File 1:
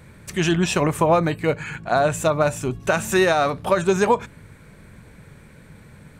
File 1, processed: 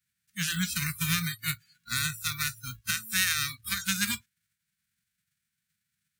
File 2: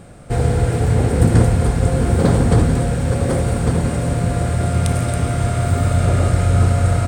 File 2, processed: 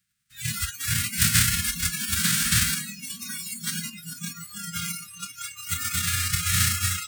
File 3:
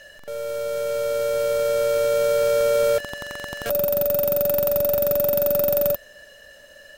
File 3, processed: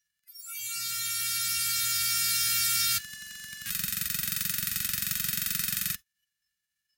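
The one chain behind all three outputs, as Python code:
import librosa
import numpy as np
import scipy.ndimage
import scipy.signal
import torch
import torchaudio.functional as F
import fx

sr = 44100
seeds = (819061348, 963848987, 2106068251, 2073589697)

y = fx.envelope_flatten(x, sr, power=0.3)
y = scipy.signal.sosfilt(scipy.signal.ellip(3, 1.0, 50, [200.0, 1500.0], 'bandstop', fs=sr, output='sos'), y)
y = fx.noise_reduce_blind(y, sr, reduce_db=29)
y = scipy.signal.sosfilt(scipy.signal.butter(2, 54.0, 'highpass', fs=sr, output='sos'), y)
y = y * librosa.db_to_amplitude(-6.5)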